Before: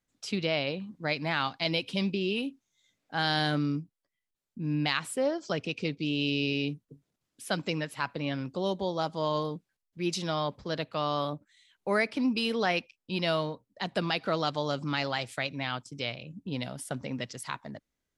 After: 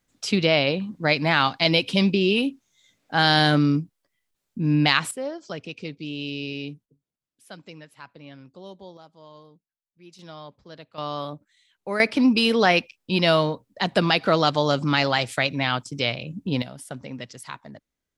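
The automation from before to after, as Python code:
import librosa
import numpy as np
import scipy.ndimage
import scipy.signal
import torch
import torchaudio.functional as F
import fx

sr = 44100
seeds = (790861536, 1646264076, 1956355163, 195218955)

y = fx.gain(x, sr, db=fx.steps((0.0, 9.5), (5.11, -2.5), (6.86, -11.5), (8.97, -18.0), (10.19, -10.5), (10.98, -0.5), (12.0, 9.5), (16.62, -0.5)))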